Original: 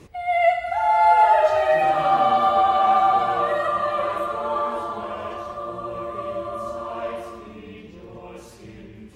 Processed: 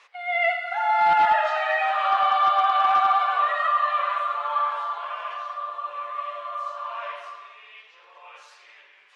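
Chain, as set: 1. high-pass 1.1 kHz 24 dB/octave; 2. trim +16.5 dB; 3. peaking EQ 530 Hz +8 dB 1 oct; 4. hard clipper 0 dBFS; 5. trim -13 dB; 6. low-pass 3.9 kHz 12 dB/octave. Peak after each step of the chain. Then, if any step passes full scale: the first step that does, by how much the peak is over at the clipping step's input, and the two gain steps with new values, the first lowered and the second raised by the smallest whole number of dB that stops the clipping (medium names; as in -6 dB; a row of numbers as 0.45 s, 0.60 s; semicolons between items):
-14.0 dBFS, +2.5 dBFS, +4.0 dBFS, 0.0 dBFS, -13.0 dBFS, -12.5 dBFS; step 2, 4.0 dB; step 2 +12.5 dB, step 5 -9 dB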